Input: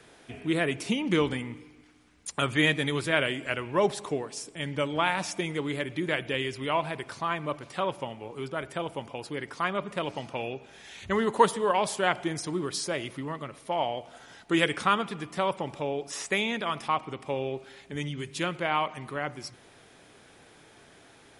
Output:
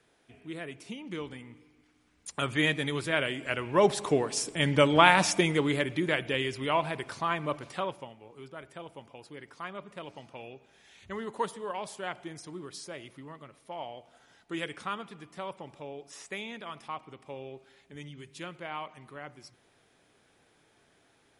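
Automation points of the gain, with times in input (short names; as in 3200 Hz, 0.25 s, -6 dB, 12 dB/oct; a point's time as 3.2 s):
1.25 s -13 dB
2.49 s -3 dB
3.31 s -3 dB
4.37 s +7 dB
5.28 s +7 dB
6.17 s 0 dB
7.68 s 0 dB
8.15 s -11 dB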